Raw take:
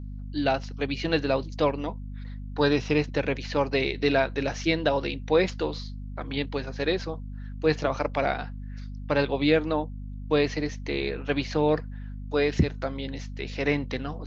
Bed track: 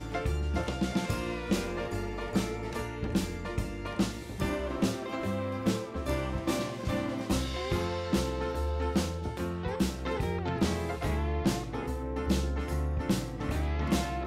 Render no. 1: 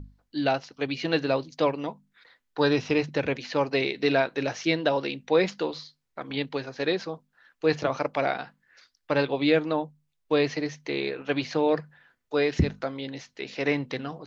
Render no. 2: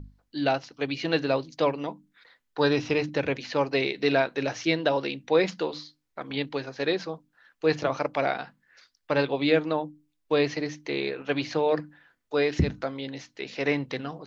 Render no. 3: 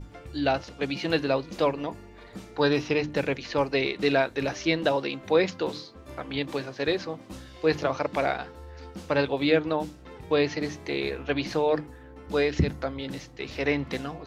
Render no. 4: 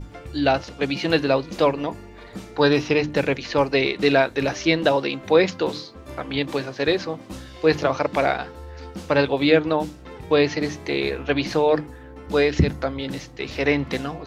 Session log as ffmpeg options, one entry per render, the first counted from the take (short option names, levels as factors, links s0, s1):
-af "bandreject=f=50:t=h:w=6,bandreject=f=100:t=h:w=6,bandreject=f=150:t=h:w=6,bandreject=f=200:t=h:w=6,bandreject=f=250:t=h:w=6"
-af "bandreject=f=60:t=h:w=6,bandreject=f=120:t=h:w=6,bandreject=f=180:t=h:w=6,bandreject=f=240:t=h:w=6,bandreject=f=300:t=h:w=6"
-filter_complex "[1:a]volume=0.237[s0];[0:a][s0]amix=inputs=2:normalize=0"
-af "volume=1.88"